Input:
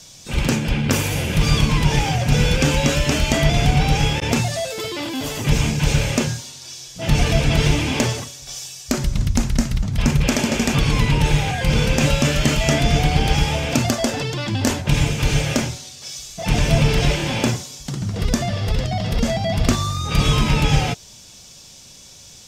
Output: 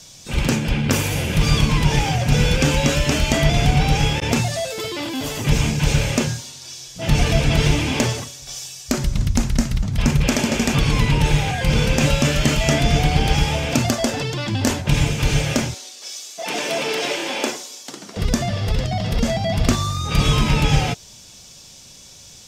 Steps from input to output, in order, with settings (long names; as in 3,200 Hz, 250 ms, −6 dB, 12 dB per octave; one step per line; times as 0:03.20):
0:15.74–0:18.17: high-pass filter 300 Hz 24 dB per octave